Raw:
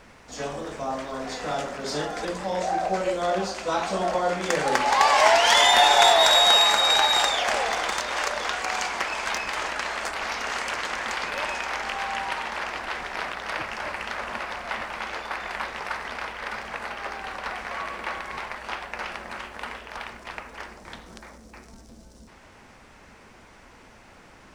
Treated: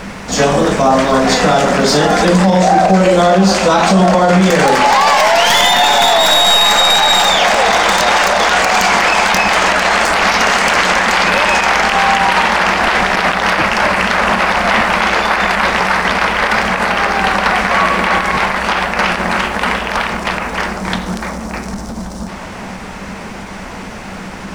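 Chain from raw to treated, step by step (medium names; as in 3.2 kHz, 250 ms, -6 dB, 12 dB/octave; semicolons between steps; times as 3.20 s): tracing distortion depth 0.081 ms; peaking EQ 190 Hz +13.5 dB 0.27 oct; on a send: band-passed feedback delay 1128 ms, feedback 68%, band-pass 690 Hz, level -15 dB; on the sum: loudness maximiser +22.5 dB; endings held to a fixed fall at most 100 dB/s; trim -1 dB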